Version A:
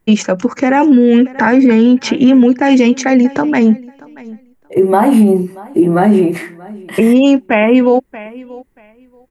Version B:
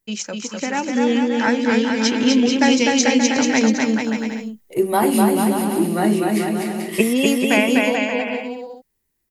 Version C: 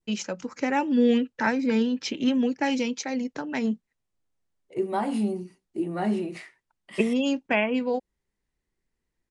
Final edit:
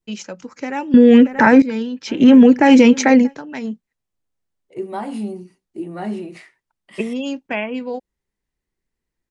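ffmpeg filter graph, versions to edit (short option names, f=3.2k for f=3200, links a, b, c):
-filter_complex "[0:a]asplit=2[a][b];[2:a]asplit=3[c][d][e];[c]atrim=end=0.942[f];[a]atrim=start=0.938:end=1.622[g];[d]atrim=start=1.618:end=2.3[h];[b]atrim=start=2.06:end=3.36[i];[e]atrim=start=3.12[j];[f][g]acrossfade=d=0.004:c1=hsin:c2=hsin[k];[k][h]acrossfade=d=0.004:c1=hsin:c2=hsin[l];[l][i]acrossfade=d=0.24:c1=tri:c2=tri[m];[m][j]acrossfade=d=0.24:c1=tri:c2=tri"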